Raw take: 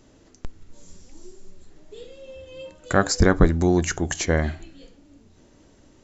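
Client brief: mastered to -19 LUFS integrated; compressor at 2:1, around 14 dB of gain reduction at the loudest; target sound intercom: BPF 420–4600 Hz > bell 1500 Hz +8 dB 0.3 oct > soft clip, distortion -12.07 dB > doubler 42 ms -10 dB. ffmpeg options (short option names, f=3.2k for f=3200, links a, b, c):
-filter_complex "[0:a]acompressor=threshold=-36dB:ratio=2,highpass=420,lowpass=4.6k,equalizer=f=1.5k:t=o:w=0.3:g=8,asoftclip=threshold=-23.5dB,asplit=2[a][b];[b]adelay=42,volume=-10dB[c];[a][c]amix=inputs=2:normalize=0,volume=19dB"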